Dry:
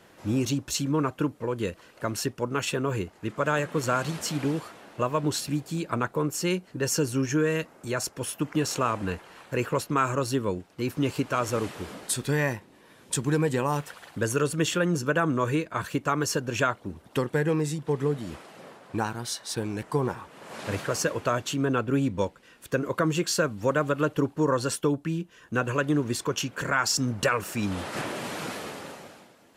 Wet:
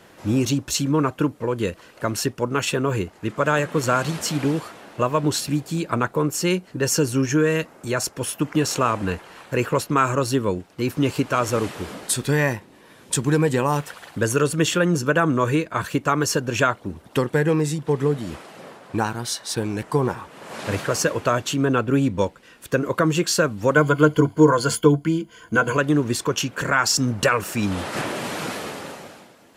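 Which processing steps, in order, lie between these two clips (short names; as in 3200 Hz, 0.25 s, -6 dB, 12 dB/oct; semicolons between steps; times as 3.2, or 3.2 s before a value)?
23.75–25.77 ripple EQ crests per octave 1.8, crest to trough 13 dB; gain +5.5 dB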